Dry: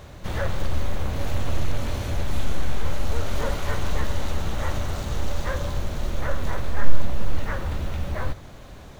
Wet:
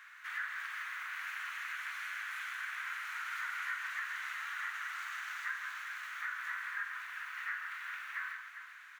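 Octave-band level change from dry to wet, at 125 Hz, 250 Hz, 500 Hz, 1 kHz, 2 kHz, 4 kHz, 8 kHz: below −40 dB, below −40 dB, below −40 dB, −8.5 dB, +1.0 dB, −10.5 dB, can't be measured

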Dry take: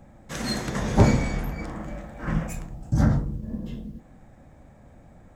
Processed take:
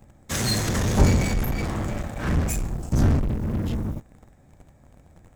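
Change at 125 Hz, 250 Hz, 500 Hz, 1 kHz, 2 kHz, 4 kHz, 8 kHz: +2.5, +0.5, +0.5, 0.0, +2.5, +5.5, +8.5 decibels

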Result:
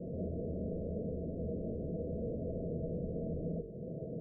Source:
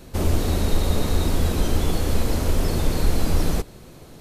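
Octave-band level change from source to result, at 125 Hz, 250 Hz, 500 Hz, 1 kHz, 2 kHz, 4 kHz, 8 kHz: −16.0 dB, −11.5 dB, −9.5 dB, below −25 dB, below −40 dB, below −40 dB, below −40 dB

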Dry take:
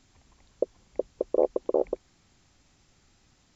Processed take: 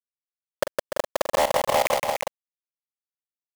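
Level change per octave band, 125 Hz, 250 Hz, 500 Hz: can't be measured, −4.5 dB, +2.5 dB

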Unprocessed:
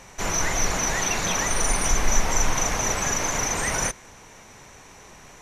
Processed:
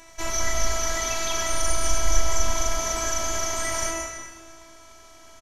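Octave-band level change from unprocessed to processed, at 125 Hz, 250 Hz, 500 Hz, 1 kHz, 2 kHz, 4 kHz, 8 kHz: −3.0, −6.0, +0.5, −2.5, −4.5, 0.0, −2.5 decibels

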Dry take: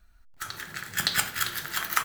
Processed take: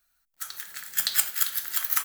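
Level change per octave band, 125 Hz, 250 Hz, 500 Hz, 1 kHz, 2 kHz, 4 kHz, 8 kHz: below −20 dB, below −15 dB, below −10 dB, −8.0 dB, −6.5 dB, −2.0 dB, +3.5 dB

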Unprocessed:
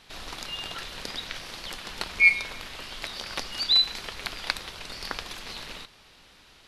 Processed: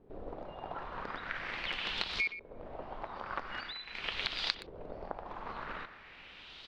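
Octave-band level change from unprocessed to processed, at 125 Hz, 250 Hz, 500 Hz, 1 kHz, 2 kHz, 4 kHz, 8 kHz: −4.5, −3.5, −0.5, −1.0, −11.5, −11.5, −18.5 decibels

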